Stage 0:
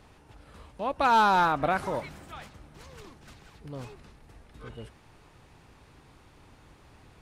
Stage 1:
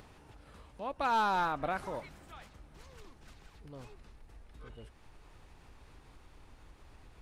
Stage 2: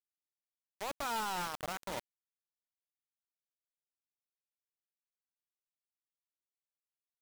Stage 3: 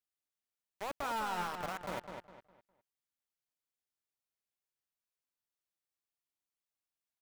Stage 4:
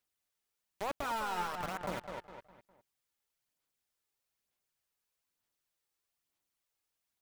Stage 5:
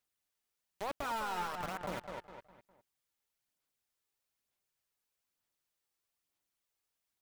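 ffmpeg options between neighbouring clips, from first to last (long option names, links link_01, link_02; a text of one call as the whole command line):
ffmpeg -i in.wav -af "asubboost=boost=4:cutoff=57,acompressor=mode=upward:threshold=-40dB:ratio=2.5,volume=-8dB" out.wav
ffmpeg -i in.wav -af "alimiter=level_in=6dB:limit=-24dB:level=0:latency=1:release=43,volume=-6dB,acrusher=bits=5:mix=0:aa=0.000001,volume=-2dB" out.wav
ffmpeg -i in.wav -filter_complex "[0:a]acrossover=split=2700[link_01][link_02];[link_02]alimiter=level_in=17dB:limit=-24dB:level=0:latency=1,volume=-17dB[link_03];[link_01][link_03]amix=inputs=2:normalize=0,asplit=2[link_04][link_05];[link_05]adelay=204,lowpass=frequency=4300:poles=1,volume=-6dB,asplit=2[link_06][link_07];[link_07]adelay=204,lowpass=frequency=4300:poles=1,volume=0.32,asplit=2[link_08][link_09];[link_09]adelay=204,lowpass=frequency=4300:poles=1,volume=0.32,asplit=2[link_10][link_11];[link_11]adelay=204,lowpass=frequency=4300:poles=1,volume=0.32[link_12];[link_04][link_06][link_08][link_10][link_12]amix=inputs=5:normalize=0" out.wav
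ffmpeg -i in.wav -af "acompressor=threshold=-50dB:ratio=1.5,aphaser=in_gain=1:out_gain=1:delay=2.4:decay=0.32:speed=1.1:type=sinusoidal,volume=6dB" out.wav
ffmpeg -i in.wav -af "asoftclip=type=hard:threshold=-29.5dB,volume=-1dB" out.wav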